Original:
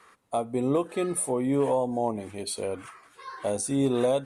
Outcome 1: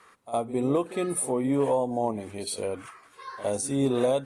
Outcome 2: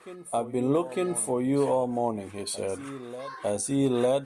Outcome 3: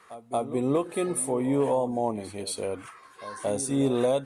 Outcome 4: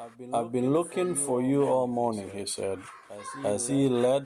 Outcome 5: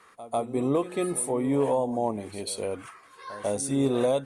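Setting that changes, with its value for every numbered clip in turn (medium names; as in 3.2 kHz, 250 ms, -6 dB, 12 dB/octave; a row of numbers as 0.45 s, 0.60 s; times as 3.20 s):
reverse echo, time: 60 ms, 904 ms, 228 ms, 344 ms, 146 ms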